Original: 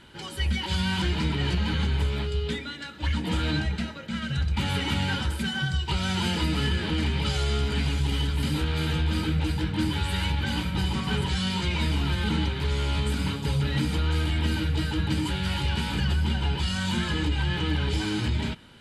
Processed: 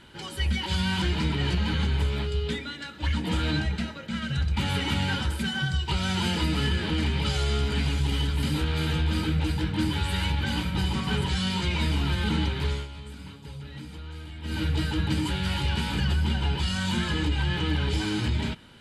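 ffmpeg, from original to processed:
ffmpeg -i in.wav -filter_complex "[0:a]asplit=3[link_01][link_02][link_03];[link_01]atrim=end=12.88,asetpts=PTS-STARTPTS,afade=type=out:start_time=12.67:duration=0.21:silence=0.188365[link_04];[link_02]atrim=start=12.88:end=14.42,asetpts=PTS-STARTPTS,volume=-14.5dB[link_05];[link_03]atrim=start=14.42,asetpts=PTS-STARTPTS,afade=type=in:duration=0.21:silence=0.188365[link_06];[link_04][link_05][link_06]concat=n=3:v=0:a=1" out.wav

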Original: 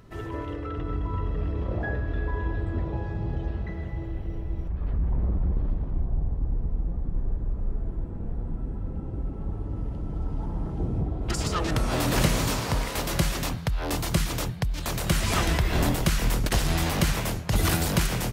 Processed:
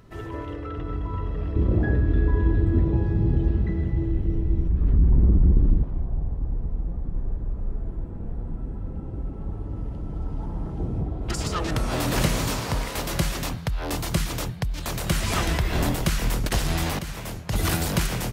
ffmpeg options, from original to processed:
ffmpeg -i in.wav -filter_complex "[0:a]asettb=1/sr,asplit=3[link_01][link_02][link_03];[link_01]atrim=end=1.564[link_04];[link_02]atrim=start=1.56:end=5.83,asetpts=PTS-STARTPTS,afade=type=in:duration=0.004:curve=qsin,afade=type=out:start_time=4.266:duration=0.004:curve=qsin,lowshelf=frequency=450:width_type=q:width=1.5:gain=8[link_05];[link_03]atrim=start=5.826[link_06];[link_04][link_05]acrossfade=duration=0.004:curve1=hsin:curve2=qsin[link_07];[link_07][link_06]acrossfade=duration=0.004:curve1=qsin:curve2=hsin,asplit=2[link_08][link_09];[link_08]atrim=end=16.99,asetpts=PTS-STARTPTS,afade=type=out:start_time=16.986:duration=0.004:curve=hsin:silence=0.251189[link_10];[link_09]atrim=start=16.99,asetpts=PTS-STARTPTS,afade=type=in:duration=0.72:silence=0.251189[link_11];[link_10][link_11]concat=n=2:v=0:a=1" out.wav

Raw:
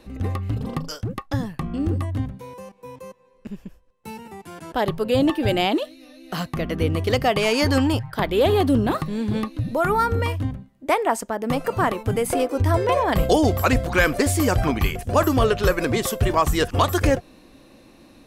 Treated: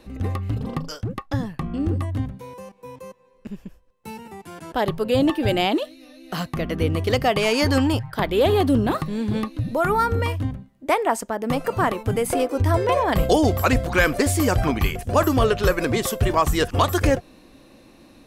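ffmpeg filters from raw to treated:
ffmpeg -i in.wav -filter_complex "[0:a]asettb=1/sr,asplit=3[link_01][link_02][link_03];[link_01]atrim=end=0.604[link_04];[link_02]atrim=start=0.6:end=2.01,asetpts=PTS-STARTPTS,afade=type=in:duration=0.004:curve=qsin,afade=type=out:start_time=1.406:duration=0.004:curve=qsin,highshelf=frequency=6300:gain=-5[link_05];[link_03]atrim=start=2.006[link_06];[link_04][link_05]acrossfade=duration=0.004:curve1=hsin:curve2=qsin[link_07];[link_07][link_06]acrossfade=duration=0.004:curve1=qsin:curve2=hsin" out.wav

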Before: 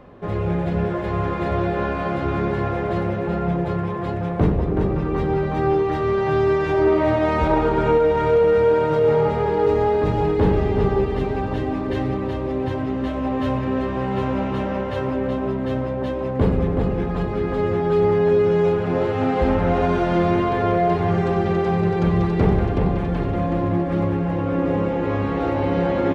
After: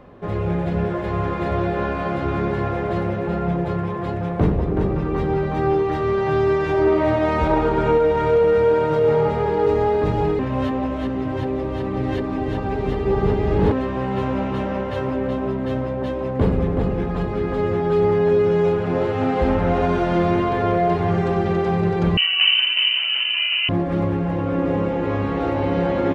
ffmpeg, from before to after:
ffmpeg -i in.wav -filter_complex "[0:a]asettb=1/sr,asplit=3[link_01][link_02][link_03];[link_01]atrim=end=22.174[link_04];[link_02]atrim=start=22.17:end=23.69,asetpts=PTS-STARTPTS,afade=type=in:duration=0.004:curve=qsin,afade=type=out:start_time=1.516:duration=0.004:curve=qsin,lowpass=frequency=2600:width_type=q:width=0.5098,lowpass=frequency=2600:width_type=q:width=0.6013,lowpass=frequency=2600:width_type=q:width=0.9,lowpass=frequency=2600:width_type=q:width=2.563,afreqshift=-3100[link_05];[link_03]atrim=start=23.686[link_06];[link_04][link_05]acrossfade=duration=0.004:curve1=hsin:curve2=qsin[link_07];[link_07][link_06]acrossfade=duration=0.004:curve1=qsin:curve2=hsin,asplit=3[link_08][link_09][link_10];[link_08]atrim=end=10.392[link_11];[link_09]atrim=start=10.388:end=13.722,asetpts=PTS-STARTPTS,areverse[link_12];[link_10]atrim=start=13.718[link_13];[link_11][link_12]acrossfade=duration=0.004:curve1=hsin:curve2=hsin[link_14];[link_14][link_13]acrossfade=duration=0.004:curve1=hsin:curve2=hsin" out.wav

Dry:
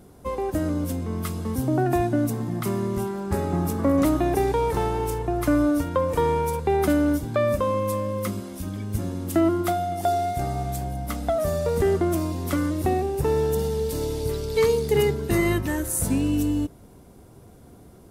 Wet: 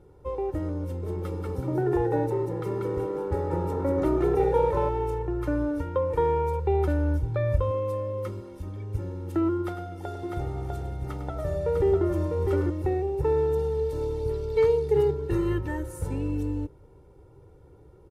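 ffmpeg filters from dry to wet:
ffmpeg -i in.wav -filter_complex "[0:a]asettb=1/sr,asplit=3[link_01][link_02][link_03];[link_01]atrim=end=0.844[link_04];[link_02]atrim=start=0.84:end=4.89,asetpts=PTS-STARTPTS,afade=type=in:duration=0.004:curve=qsin,afade=type=out:start_time=4.046:duration=0.004:curve=qsin,asplit=5[link_05][link_06][link_07][link_08][link_09];[link_06]adelay=188,afreqshift=100,volume=-3.5dB[link_10];[link_07]adelay=376,afreqshift=200,volume=-13.1dB[link_11];[link_08]adelay=564,afreqshift=300,volume=-22.8dB[link_12];[link_09]adelay=752,afreqshift=400,volume=-32.4dB[link_13];[link_05][link_10][link_11][link_12][link_13]amix=inputs=5:normalize=0,atrim=end_sample=178605[link_14];[link_03]atrim=start=4.886[link_15];[link_04][link_14]acrossfade=duration=0.004:curve1=hsin:curve2=qsin[link_16];[link_16][link_15]acrossfade=duration=0.004:curve1=qsin:curve2=hsin,asettb=1/sr,asplit=3[link_17][link_18][link_19];[link_17]atrim=end=6.244[link_20];[link_18]atrim=start=6.24:end=7.71,asetpts=PTS-STARTPTS,afade=type=in:duration=0.004:curve=qsin,afade=type=out:start_time=1.466:duration=0.004:curve=qsin,asubboost=boost=9:cutoff=130[link_21];[link_19]atrim=start=7.706[link_22];[link_20][link_21]acrossfade=duration=0.004:curve1=hsin:curve2=qsin[link_23];[link_23][link_22]acrossfade=duration=0.004:curve1=qsin:curve2=hsin,asettb=1/sr,asplit=3[link_24][link_25][link_26];[link_24]atrim=end=9.584[link_27];[link_25]atrim=start=9.58:end=12.7,asetpts=PTS-STARTPTS,afade=type=in:duration=0.004:curve=qsin,afade=type=out:start_time=3.116:duration=0.004:curve=qsin,aecho=1:1:102|650:0.316|0.631,atrim=end_sample=137592[link_28];[link_26]atrim=start=12.696[link_29];[link_27][link_28]acrossfade=duration=0.004:curve1=hsin:curve2=qsin[link_30];[link_30][link_29]acrossfade=duration=0.004:curve1=qsin:curve2=hsin,lowpass=frequency=1200:poles=1,aecho=1:1:2.2:0.94,volume=-6dB" out.wav

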